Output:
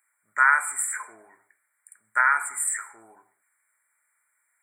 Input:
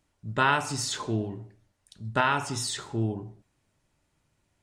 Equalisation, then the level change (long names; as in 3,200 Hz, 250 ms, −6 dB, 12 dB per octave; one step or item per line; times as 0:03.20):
high-pass with resonance 1,500 Hz, resonance Q 2.2
linear-phase brick-wall band-stop 2,400–7,200 Hz
high-shelf EQ 3,400 Hz +11.5 dB
0.0 dB